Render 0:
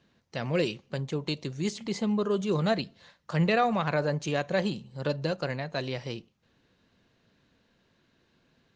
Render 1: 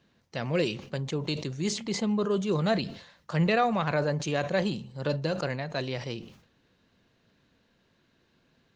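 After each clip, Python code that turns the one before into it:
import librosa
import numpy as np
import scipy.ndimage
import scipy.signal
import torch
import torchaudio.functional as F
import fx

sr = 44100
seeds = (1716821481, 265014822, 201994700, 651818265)

y = fx.sustainer(x, sr, db_per_s=95.0)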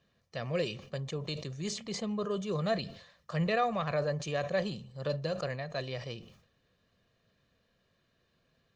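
y = x + 0.48 * np.pad(x, (int(1.7 * sr / 1000.0), 0))[:len(x)]
y = F.gain(torch.from_numpy(y), -6.0).numpy()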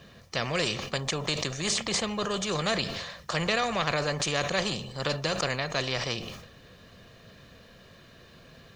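y = fx.spectral_comp(x, sr, ratio=2.0)
y = F.gain(torch.from_numpy(y), 7.0).numpy()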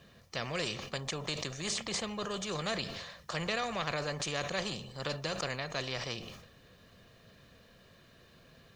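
y = fx.quant_dither(x, sr, seeds[0], bits=12, dither='triangular')
y = F.gain(torch.from_numpy(y), -7.0).numpy()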